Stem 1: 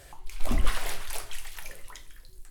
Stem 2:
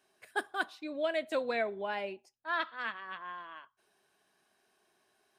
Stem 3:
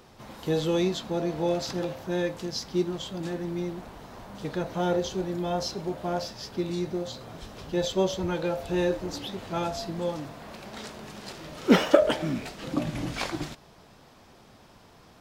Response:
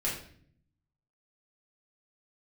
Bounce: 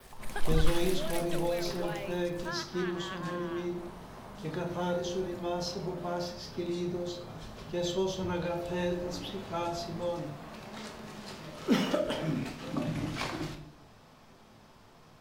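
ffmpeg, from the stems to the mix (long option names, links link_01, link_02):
-filter_complex "[0:a]aeval=exprs='val(0)*gte(abs(val(0)),0.00335)':channel_layout=same,volume=-3.5dB[link_01];[1:a]aemphasis=mode=production:type=cd,acompressor=threshold=-39dB:ratio=6,volume=2.5dB[link_02];[2:a]equalizer=frequency=1100:width=2.3:gain=3,volume=-9dB,asplit=2[link_03][link_04];[link_04]volume=-4.5dB[link_05];[3:a]atrim=start_sample=2205[link_06];[link_05][link_06]afir=irnorm=-1:irlink=0[link_07];[link_01][link_02][link_03][link_07]amix=inputs=4:normalize=0,adynamicequalizer=threshold=0.00126:dfrequency=7300:dqfactor=2.6:tfrequency=7300:tqfactor=2.6:attack=5:release=100:ratio=0.375:range=1.5:mode=cutabove:tftype=bell,acrossover=split=210|3000[link_08][link_09][link_10];[link_09]acompressor=threshold=-30dB:ratio=3[link_11];[link_08][link_11][link_10]amix=inputs=3:normalize=0"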